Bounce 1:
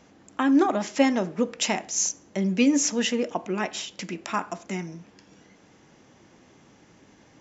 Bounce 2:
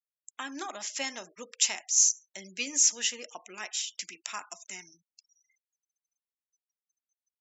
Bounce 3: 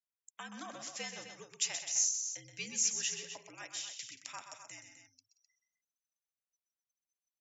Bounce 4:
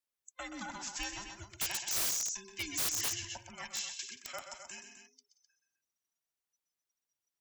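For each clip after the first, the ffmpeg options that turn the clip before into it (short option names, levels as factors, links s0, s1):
-af "aderivative,afftfilt=real='re*gte(hypot(re,im),0.002)':imag='im*gte(hypot(re,im),0.002)':win_size=1024:overlap=0.75,volume=1.68"
-filter_complex "[0:a]afreqshift=-64,asplit=2[s0][s1];[s1]aecho=0:1:126|179|257:0.398|0.15|0.316[s2];[s0][s2]amix=inputs=2:normalize=0,volume=0.376"
-filter_complex "[0:a]afftfilt=real='real(if(between(b,1,1008),(2*floor((b-1)/24)+1)*24-b,b),0)':imag='imag(if(between(b,1,1008),(2*floor((b-1)/24)+1)*24-b,b),0)*if(between(b,1,1008),-1,1)':win_size=2048:overlap=0.75,acrossover=split=150[s0][s1];[s1]aeval=exprs='(mod(31.6*val(0)+1,2)-1)/31.6':c=same[s2];[s0][s2]amix=inputs=2:normalize=0,volume=1.41"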